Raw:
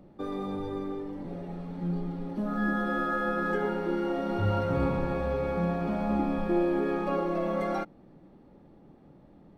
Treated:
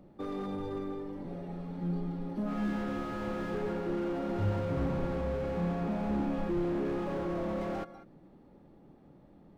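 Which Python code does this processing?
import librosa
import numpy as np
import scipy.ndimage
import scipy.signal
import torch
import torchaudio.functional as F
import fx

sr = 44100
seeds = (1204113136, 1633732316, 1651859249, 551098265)

y = x + 10.0 ** (-18.5 / 20.0) * np.pad(x, (int(196 * sr / 1000.0), 0))[:len(x)]
y = fx.slew_limit(y, sr, full_power_hz=16.0)
y = y * librosa.db_to_amplitude(-2.5)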